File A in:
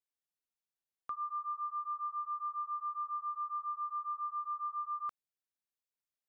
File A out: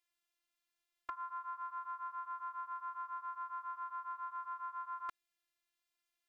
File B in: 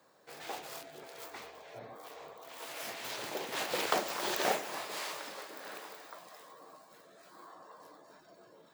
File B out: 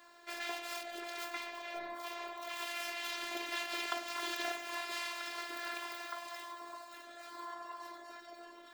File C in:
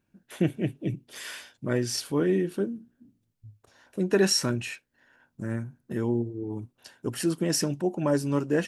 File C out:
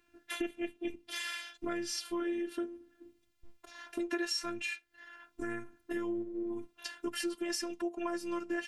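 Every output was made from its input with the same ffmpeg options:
-af "afftfilt=real='hypot(re,im)*cos(PI*b)':imag='0':win_size=512:overlap=0.75,equalizer=f=2.3k:t=o:w=2.5:g=9.5,acompressor=threshold=-41dB:ratio=4,volume=5.5dB"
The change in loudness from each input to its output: -5.5, -2.5, -9.5 LU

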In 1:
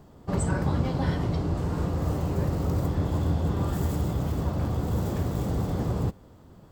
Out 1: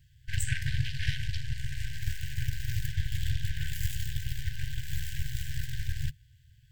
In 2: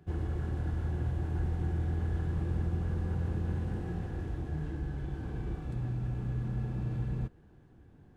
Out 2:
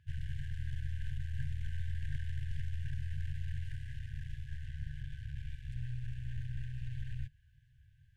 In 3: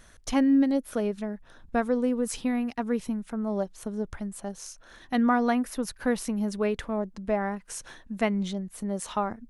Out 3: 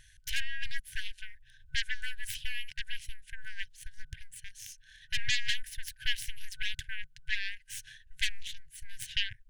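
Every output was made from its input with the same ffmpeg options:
-af "aeval=exprs='0.251*(cos(1*acos(clip(val(0)/0.251,-1,1)))-cos(1*PI/2))+0.0126*(cos(5*acos(clip(val(0)/0.251,-1,1)))-cos(5*PI/2))+0.0708*(cos(7*acos(clip(val(0)/0.251,-1,1)))-cos(7*PI/2))+0.0447*(cos(8*acos(clip(val(0)/0.251,-1,1)))-cos(8*PI/2))':c=same,afftfilt=real='re*(1-between(b*sr/4096,150,1500))':imag='im*(1-between(b*sr/4096,150,1500))':win_size=4096:overlap=0.75,equalizer=f=3k:w=3.8:g=6,volume=-1.5dB"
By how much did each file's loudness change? -7.0, -7.0, -8.5 LU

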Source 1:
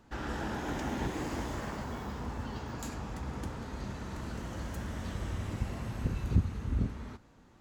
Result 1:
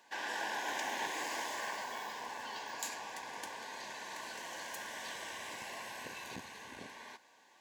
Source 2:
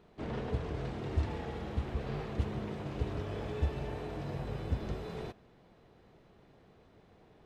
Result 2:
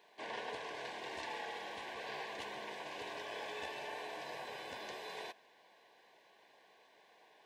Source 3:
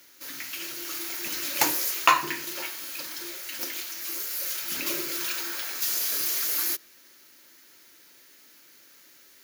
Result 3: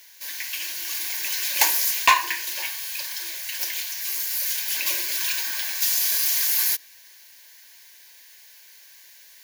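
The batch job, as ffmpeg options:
-af "aeval=exprs='0.891*(cos(1*acos(clip(val(0)/0.891,-1,1)))-cos(1*PI/2))+0.1*(cos(6*acos(clip(val(0)/0.891,-1,1)))-cos(6*PI/2))':c=same,highpass=900,aeval=exprs='0.841*sin(PI/2*1.58*val(0)/0.841)':c=same,asuperstop=centerf=1300:order=8:qfactor=4.1,volume=-2.5dB"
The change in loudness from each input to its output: -4.0, -6.5, +5.0 LU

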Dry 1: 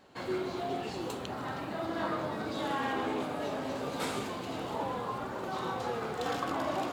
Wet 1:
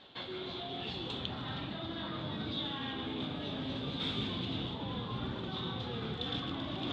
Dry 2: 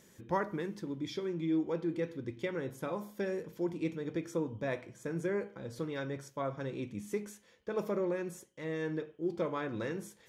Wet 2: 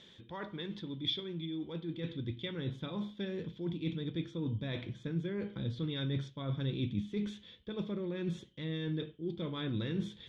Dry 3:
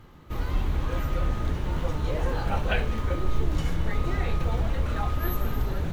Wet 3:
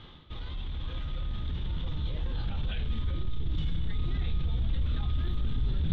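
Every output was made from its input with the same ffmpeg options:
-af "alimiter=limit=-23.5dB:level=0:latency=1:release=12,areverse,acompressor=threshold=-40dB:ratio=6,areverse,asubboost=boost=6:cutoff=250,lowpass=f=3.5k:t=q:w=11"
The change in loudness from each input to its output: -3.0, -1.0, -5.0 LU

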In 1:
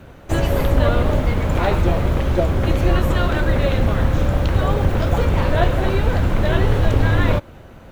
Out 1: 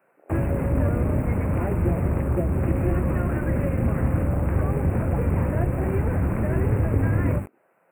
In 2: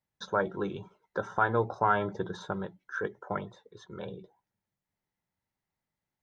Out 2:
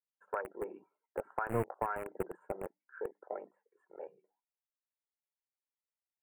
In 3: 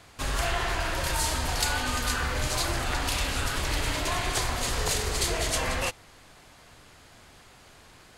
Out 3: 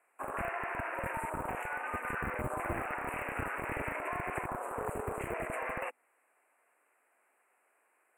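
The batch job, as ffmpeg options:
-filter_complex "[0:a]highpass=80,bandreject=f=50:t=h:w=6,bandreject=f=100:t=h:w=6,bandreject=f=150:t=h:w=6,bandreject=f=200:t=h:w=6,bandreject=f=250:t=h:w=6,bandreject=f=300:t=h:w=6,afwtdn=0.0282,acrossover=split=360[a][b];[a]aeval=exprs='val(0)*gte(abs(val(0)),0.0266)':c=same[c];[b]acompressor=threshold=-34dB:ratio=5[d];[c][d]amix=inputs=2:normalize=0,asuperstop=centerf=4600:order=12:qfactor=0.88"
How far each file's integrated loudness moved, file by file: -5.0, -8.5, -9.5 LU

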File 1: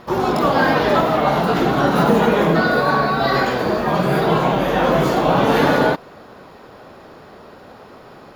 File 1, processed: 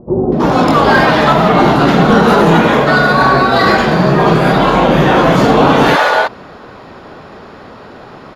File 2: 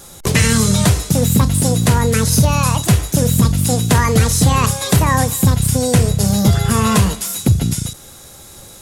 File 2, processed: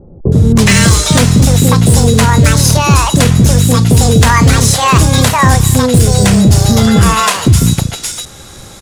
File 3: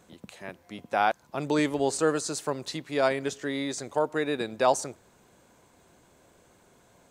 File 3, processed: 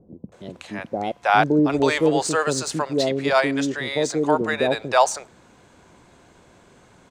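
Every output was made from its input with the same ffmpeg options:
-filter_complex "[0:a]acrossover=split=550[a][b];[b]adelay=320[c];[a][c]amix=inputs=2:normalize=0,adynamicsmooth=sensitivity=3:basefreq=7.4k,apsyclip=10.5dB,volume=-1.5dB"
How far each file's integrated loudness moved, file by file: +7.0, +6.0, +7.0 LU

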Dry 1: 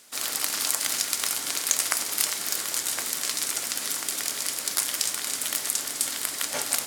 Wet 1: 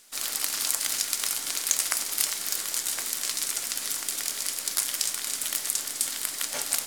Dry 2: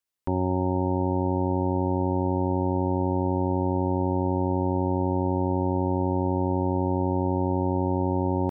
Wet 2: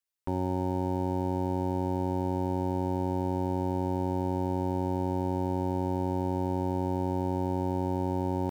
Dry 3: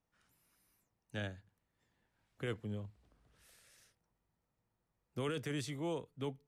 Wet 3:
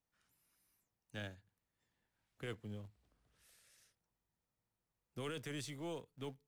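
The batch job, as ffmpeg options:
-filter_complex "[0:a]highshelf=f=2k:g=4.5,asplit=2[a][b];[b]acrusher=bits=5:dc=4:mix=0:aa=0.000001,volume=-12dB[c];[a][c]amix=inputs=2:normalize=0,volume=-7dB"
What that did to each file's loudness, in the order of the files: -1.0, -5.0, -5.5 LU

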